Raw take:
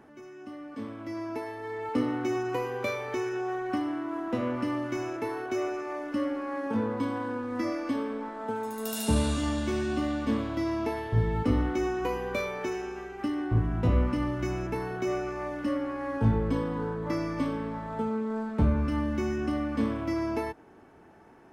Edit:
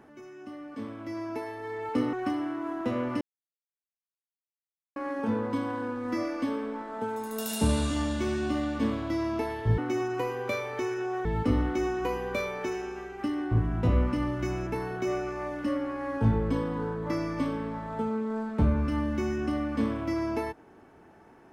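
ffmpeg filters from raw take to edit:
-filter_complex "[0:a]asplit=6[s0][s1][s2][s3][s4][s5];[s0]atrim=end=2.132[s6];[s1]atrim=start=3.598:end=4.68,asetpts=PTS-STARTPTS,afade=t=out:st=1.078:d=0.004:c=hsin[s7];[s2]atrim=start=4.68:end=6.43,asetpts=PTS-STARTPTS,volume=0[s8];[s3]atrim=start=6.43:end=11.252,asetpts=PTS-STARTPTS,afade=t=in:d=0.004:c=hsin[s9];[s4]atrim=start=2.128:end=3.602[s10];[s5]atrim=start=11.248[s11];[s7][s8][s9]concat=n=3:v=0:a=1[s12];[s6][s12]acrossfade=d=0.004:c1=hsin:c2=hsin[s13];[s13][s10]acrossfade=d=0.004:c1=hsin:c2=hsin[s14];[s14][s11]acrossfade=d=0.004:c1=hsin:c2=hsin"

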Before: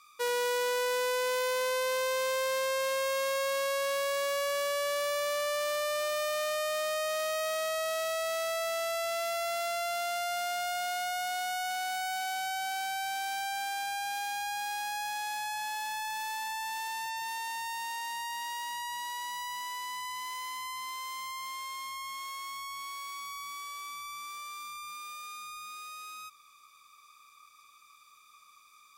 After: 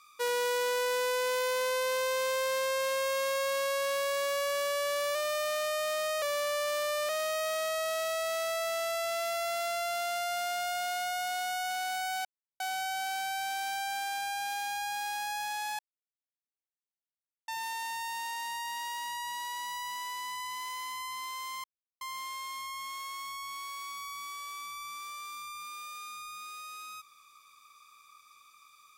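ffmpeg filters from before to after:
-filter_complex "[0:a]asplit=8[s0][s1][s2][s3][s4][s5][s6][s7];[s0]atrim=end=5.152[s8];[s1]atrim=start=6.018:end=7.092[s9];[s2]atrim=start=5.148:end=6.022[s10];[s3]atrim=start=7.088:end=12.25,asetpts=PTS-STARTPTS,afade=t=out:st=5.158:d=0.004:c=hsin,apad=pad_dur=0.35[s11];[s4]atrim=start=12.25:end=15.44,asetpts=PTS-STARTPTS,afade=t=in:d=0.004:c=hsin,afade=t=out:st=3.186:d=0.004:c=hsin[s12];[s5]atrim=start=15.44:end=17.13,asetpts=PTS-STARTPTS,volume=0[s13];[s6]atrim=start=17.13:end=21.29,asetpts=PTS-STARTPTS,afade=t=in:d=0.004:c=hsin,afade=t=out:st=4.156:d=0.004:c=hsin,apad=pad_dur=0.37[s14];[s7]atrim=start=21.29,asetpts=PTS-STARTPTS,afade=t=in:d=0.004:c=hsin[s15];[s8][s9]acrossfade=d=0.004:c1=hsin:c2=hsin[s16];[s16][s10]acrossfade=d=0.004:c1=hsin:c2=hsin[s17];[s11][s12][s13][s14][s15]concat=n=5:v=0:a=1[s18];[s17][s18]acrossfade=d=0.004:c1=hsin:c2=hsin"

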